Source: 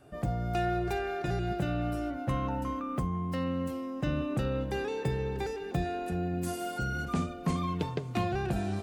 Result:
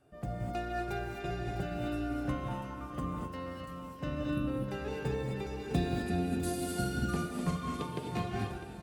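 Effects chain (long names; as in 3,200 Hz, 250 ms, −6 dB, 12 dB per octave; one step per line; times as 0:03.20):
fade-out on the ending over 0.57 s
0:04.24–0:04.47: time-frequency box erased 380–9,100 Hz
0:05.59–0:06.99: graphic EQ with 15 bands 100 Hz +6 dB, 250 Hz +12 dB, 4,000 Hz +9 dB, 10,000 Hz +8 dB
repeating echo 653 ms, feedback 53%, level −10 dB
reverb whose tail is shaped and stops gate 280 ms rising, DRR −0.5 dB
expander for the loud parts 1.5 to 1, over −35 dBFS
level −3.5 dB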